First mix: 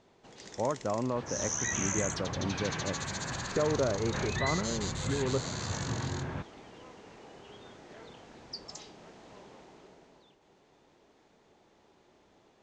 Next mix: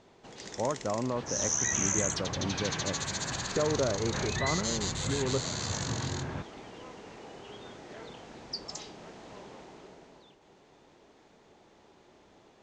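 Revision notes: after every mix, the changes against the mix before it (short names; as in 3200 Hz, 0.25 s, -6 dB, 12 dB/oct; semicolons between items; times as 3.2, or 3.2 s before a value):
first sound +4.5 dB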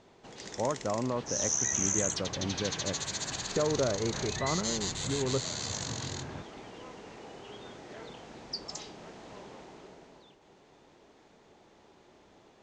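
second sound -5.5 dB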